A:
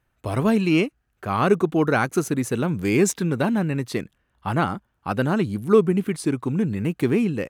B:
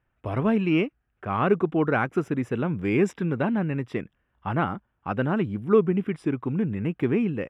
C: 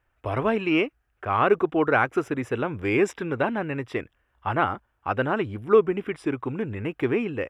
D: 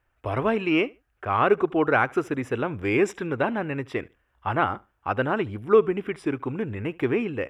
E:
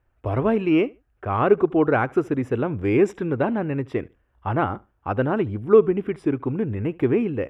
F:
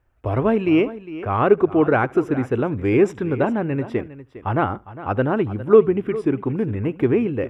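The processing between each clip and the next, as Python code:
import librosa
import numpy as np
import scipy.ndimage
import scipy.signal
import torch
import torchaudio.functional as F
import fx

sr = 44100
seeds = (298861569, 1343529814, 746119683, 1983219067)

y1 = scipy.signal.savgol_filter(x, 25, 4, mode='constant')
y1 = y1 * 10.0 ** (-3.0 / 20.0)
y2 = fx.peak_eq(y1, sr, hz=180.0, db=-14.0, octaves=1.1)
y2 = y2 * 10.0 ** (4.5 / 20.0)
y3 = fx.echo_feedback(y2, sr, ms=73, feedback_pct=19, wet_db=-24.0)
y4 = fx.tilt_shelf(y3, sr, db=6.0, hz=830.0)
y5 = y4 + 10.0 ** (-15.5 / 20.0) * np.pad(y4, (int(406 * sr / 1000.0), 0))[:len(y4)]
y5 = y5 * 10.0 ** (2.0 / 20.0)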